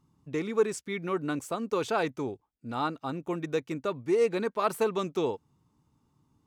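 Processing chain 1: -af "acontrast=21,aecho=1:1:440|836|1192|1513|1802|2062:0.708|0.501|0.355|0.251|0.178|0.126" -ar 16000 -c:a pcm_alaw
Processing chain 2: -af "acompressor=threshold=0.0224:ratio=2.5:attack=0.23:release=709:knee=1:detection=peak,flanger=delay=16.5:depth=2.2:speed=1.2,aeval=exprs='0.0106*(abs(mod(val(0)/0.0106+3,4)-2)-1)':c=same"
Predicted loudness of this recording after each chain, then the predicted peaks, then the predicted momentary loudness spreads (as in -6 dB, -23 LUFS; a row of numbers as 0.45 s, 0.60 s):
-23.5 LUFS, -46.0 LUFS; -6.5 dBFS, -39.5 dBFS; 5 LU, 4 LU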